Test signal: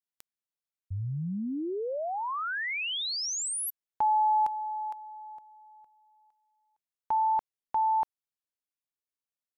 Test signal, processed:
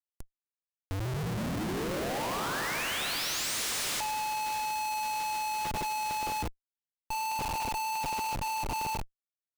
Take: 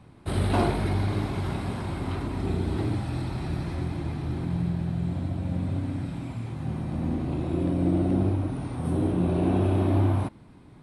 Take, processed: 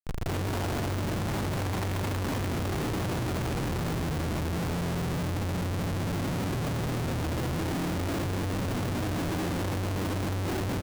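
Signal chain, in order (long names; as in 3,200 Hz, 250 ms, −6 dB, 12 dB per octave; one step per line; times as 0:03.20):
treble cut that deepens with the level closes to 1,700 Hz, closed at −21 dBFS
downward compressor 12 to 1, threshold −31 dBFS
on a send: repeating echo 211 ms, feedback 18%, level −6 dB
on the sum: dense smooth reverb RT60 4.7 s, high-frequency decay 1×, DRR −2 dB
comparator with hysteresis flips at −42.5 dBFS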